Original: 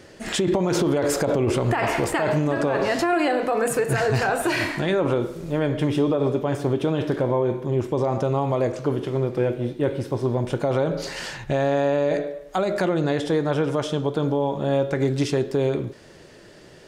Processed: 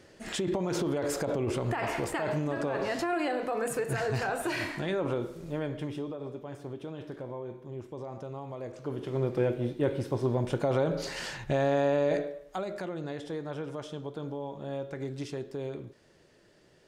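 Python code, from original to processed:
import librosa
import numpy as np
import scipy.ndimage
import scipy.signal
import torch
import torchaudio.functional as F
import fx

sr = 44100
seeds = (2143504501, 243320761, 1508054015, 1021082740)

y = fx.gain(x, sr, db=fx.line((5.49, -9.0), (6.19, -17.5), (8.61, -17.5), (9.26, -5.0), (12.15, -5.0), (12.82, -14.5)))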